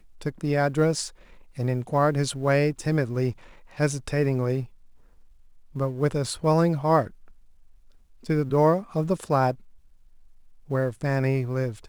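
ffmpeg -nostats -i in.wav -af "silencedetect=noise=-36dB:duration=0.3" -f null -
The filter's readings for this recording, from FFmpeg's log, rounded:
silence_start: 1.09
silence_end: 1.58 | silence_duration: 0.50
silence_start: 3.32
silence_end: 3.78 | silence_duration: 0.46
silence_start: 4.64
silence_end: 5.76 | silence_duration: 1.11
silence_start: 7.07
silence_end: 8.25 | silence_duration: 1.17
silence_start: 9.54
silence_end: 10.70 | silence_duration: 1.16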